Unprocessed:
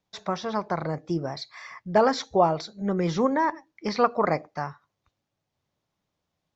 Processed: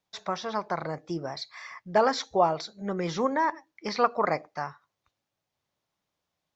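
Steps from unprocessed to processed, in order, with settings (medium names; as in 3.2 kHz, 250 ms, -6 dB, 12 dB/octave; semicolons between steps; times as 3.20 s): bass shelf 400 Hz -8 dB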